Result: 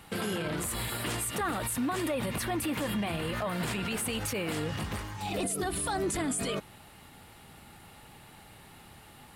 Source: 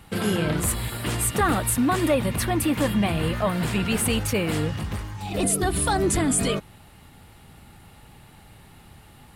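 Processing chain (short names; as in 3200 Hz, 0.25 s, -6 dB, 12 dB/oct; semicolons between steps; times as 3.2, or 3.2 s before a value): low shelf 170 Hz -9.5 dB; limiter -24 dBFS, peak gain reduction 11.5 dB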